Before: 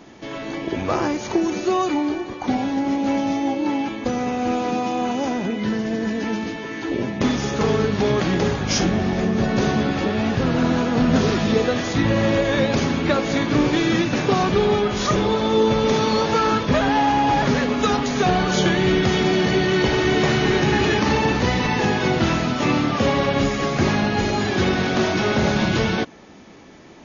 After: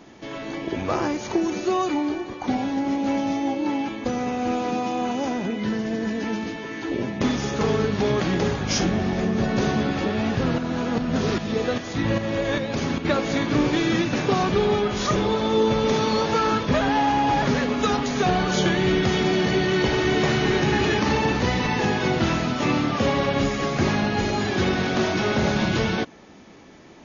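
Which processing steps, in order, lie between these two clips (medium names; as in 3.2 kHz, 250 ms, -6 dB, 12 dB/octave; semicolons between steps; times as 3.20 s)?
10.58–13.05 s: tremolo saw up 2.5 Hz, depth 60%; trim -2.5 dB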